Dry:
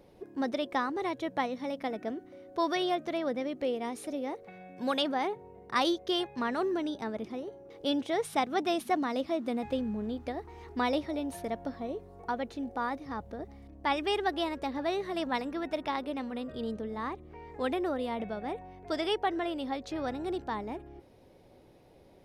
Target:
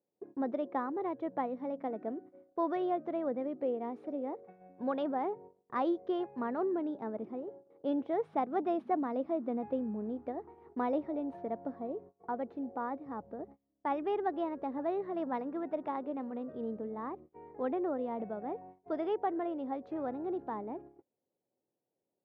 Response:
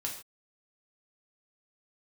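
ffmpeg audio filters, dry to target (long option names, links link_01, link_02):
-af "highpass=180,agate=range=-27dB:threshold=-48dB:ratio=16:detection=peak,lowpass=1000,volume=-1.5dB"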